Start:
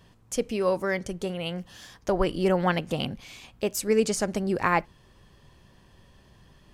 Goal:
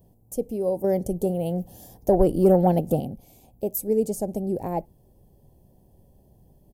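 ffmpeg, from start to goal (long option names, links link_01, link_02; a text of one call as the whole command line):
ffmpeg -i in.wav -filter_complex "[0:a]firequalizer=gain_entry='entry(770,0);entry(1200,-28);entry(13000,10)':delay=0.05:min_phase=1,asettb=1/sr,asplit=3[link_01][link_02][link_03];[link_01]atrim=end=0.844[link_04];[link_02]atrim=start=0.84:end=3,asetpts=PTS-STARTPTS,afade=type=in:duration=0.004:curve=qsin,afade=type=out:start_time=2.156:duration=0.004:curve=qsin,aeval=exprs='0.501*sin(PI/2*1.41*val(0)/0.501)':channel_layout=same[link_05];[link_03]atrim=start=2.996[link_06];[link_04][link_05]acrossfade=duration=0.004:curve1=hsin:curve2=qsin[link_07];[link_07][link_06]acrossfade=duration=0.004:curve1=qsin:curve2=hsin" out.wav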